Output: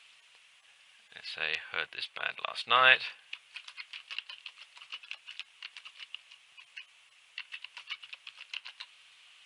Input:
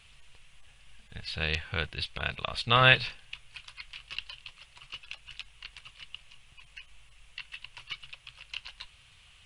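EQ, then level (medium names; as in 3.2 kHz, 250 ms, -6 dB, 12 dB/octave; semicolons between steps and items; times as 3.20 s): frequency weighting A; dynamic bell 5.3 kHz, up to -6 dB, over -45 dBFS, Q 0.78; bass shelf 260 Hz -11.5 dB; 0.0 dB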